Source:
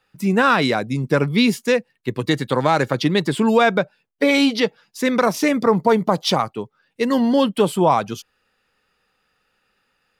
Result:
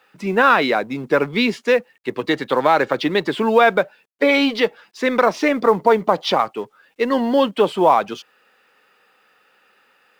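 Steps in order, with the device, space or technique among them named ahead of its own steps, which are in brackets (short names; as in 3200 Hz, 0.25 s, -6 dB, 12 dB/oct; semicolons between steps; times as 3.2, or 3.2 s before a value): phone line with mismatched companding (BPF 330–3300 Hz; G.711 law mismatch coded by mu); gain +2.5 dB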